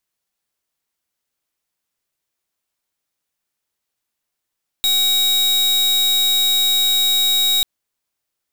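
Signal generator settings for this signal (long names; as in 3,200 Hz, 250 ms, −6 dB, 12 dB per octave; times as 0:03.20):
pulse wave 3,800 Hz, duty 41% −16 dBFS 2.79 s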